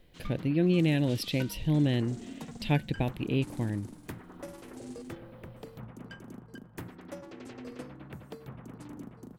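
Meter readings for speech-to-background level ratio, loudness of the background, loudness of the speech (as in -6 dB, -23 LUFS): 16.0 dB, -45.5 LUFS, -29.5 LUFS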